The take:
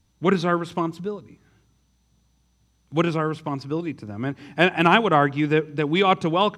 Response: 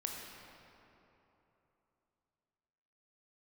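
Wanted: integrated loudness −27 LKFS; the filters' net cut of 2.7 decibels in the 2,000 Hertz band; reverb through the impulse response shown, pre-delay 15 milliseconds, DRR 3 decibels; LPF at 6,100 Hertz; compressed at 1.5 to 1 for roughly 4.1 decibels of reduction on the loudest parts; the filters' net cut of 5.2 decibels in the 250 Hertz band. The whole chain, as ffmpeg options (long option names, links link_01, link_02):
-filter_complex "[0:a]lowpass=6100,equalizer=frequency=250:width_type=o:gain=-8.5,equalizer=frequency=2000:width_type=o:gain=-3.5,acompressor=threshold=-25dB:ratio=1.5,asplit=2[link_01][link_02];[1:a]atrim=start_sample=2205,adelay=15[link_03];[link_02][link_03]afir=irnorm=-1:irlink=0,volume=-3.5dB[link_04];[link_01][link_04]amix=inputs=2:normalize=0,volume=-1dB"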